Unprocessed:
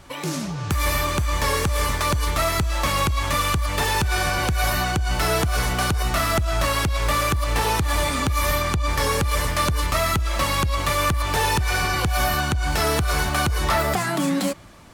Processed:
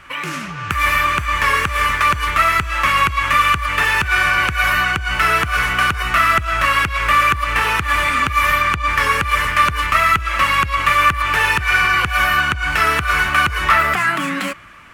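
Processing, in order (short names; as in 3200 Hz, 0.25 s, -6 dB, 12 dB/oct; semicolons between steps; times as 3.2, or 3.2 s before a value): band shelf 1800 Hz +14.5 dB; gain -3 dB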